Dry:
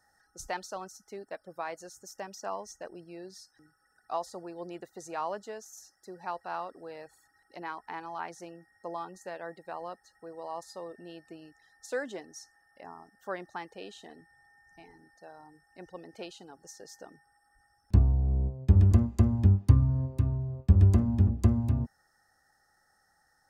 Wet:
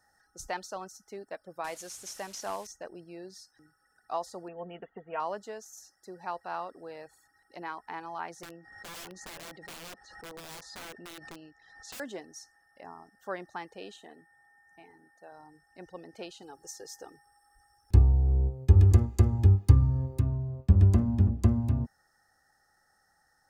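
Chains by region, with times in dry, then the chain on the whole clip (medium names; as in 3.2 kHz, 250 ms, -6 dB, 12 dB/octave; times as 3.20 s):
1.64–2.67 s: one-bit delta coder 64 kbps, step -49.5 dBFS + treble shelf 3.2 kHz +9.5 dB
4.48–5.20 s: brick-wall FIR low-pass 3.4 kHz + comb 4.4 ms, depth 64%
8.43–12.00 s: low-pass 5.2 kHz + integer overflow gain 39 dB + swell ahead of each attack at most 57 dB/s
13.96–15.32 s: high-pass 240 Hz 6 dB/octave + peaking EQ 5 kHz -11 dB 0.61 oct
16.42–20.20 s: treble shelf 5.5 kHz +6.5 dB + comb 2.4 ms, depth 57%
whole clip: none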